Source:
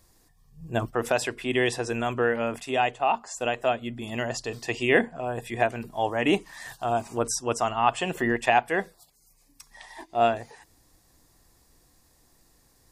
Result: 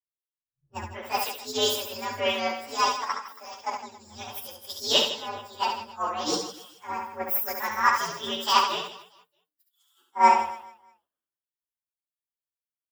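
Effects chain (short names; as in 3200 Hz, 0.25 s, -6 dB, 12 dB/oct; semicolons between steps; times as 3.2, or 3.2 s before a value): inharmonic rescaling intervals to 129%; HPF 620 Hz 6 dB/oct; high shelf 8400 Hz +5 dB; 3.04–3.79 level quantiser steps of 9 dB; on a send: reverse bouncing-ball echo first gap 70 ms, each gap 1.3×, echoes 5; on the sum: three-band expander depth 100%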